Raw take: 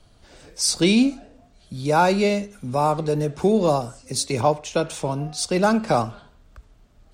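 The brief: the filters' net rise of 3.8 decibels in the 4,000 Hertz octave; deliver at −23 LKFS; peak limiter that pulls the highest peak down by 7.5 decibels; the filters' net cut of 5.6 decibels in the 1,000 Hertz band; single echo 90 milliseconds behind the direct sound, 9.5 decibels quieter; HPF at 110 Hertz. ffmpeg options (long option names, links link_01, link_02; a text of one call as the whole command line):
ffmpeg -i in.wav -af "highpass=110,equalizer=frequency=1000:width_type=o:gain=-8,equalizer=frequency=4000:width_type=o:gain=5,alimiter=limit=-13.5dB:level=0:latency=1,aecho=1:1:90:0.335,volume=1.5dB" out.wav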